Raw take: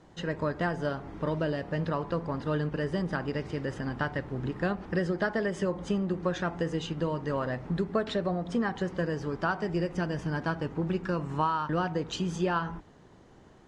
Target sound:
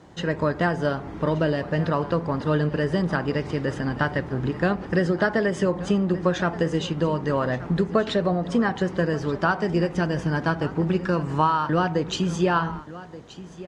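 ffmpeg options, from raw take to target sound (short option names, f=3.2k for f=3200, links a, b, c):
-af "highpass=44,aecho=1:1:1177:0.141,volume=7dB"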